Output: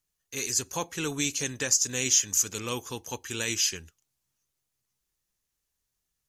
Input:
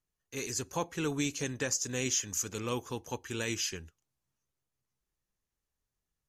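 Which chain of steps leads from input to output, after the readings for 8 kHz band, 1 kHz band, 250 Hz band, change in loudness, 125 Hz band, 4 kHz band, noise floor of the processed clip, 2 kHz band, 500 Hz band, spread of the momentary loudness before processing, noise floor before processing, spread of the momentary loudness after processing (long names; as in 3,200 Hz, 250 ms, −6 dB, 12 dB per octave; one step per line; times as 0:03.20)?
+9.0 dB, +1.5 dB, 0.0 dB, +7.0 dB, 0.0 dB, +7.5 dB, −82 dBFS, +4.5 dB, +0.5 dB, 10 LU, below −85 dBFS, 14 LU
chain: high-shelf EQ 2,300 Hz +10 dB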